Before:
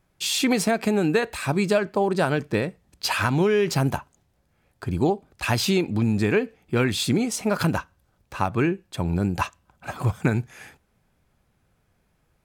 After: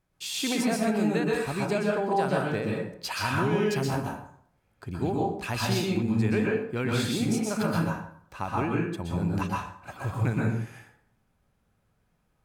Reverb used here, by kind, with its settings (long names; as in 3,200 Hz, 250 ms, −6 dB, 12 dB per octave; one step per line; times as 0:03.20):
dense smooth reverb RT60 0.64 s, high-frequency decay 0.65×, pre-delay 110 ms, DRR −3 dB
level −9 dB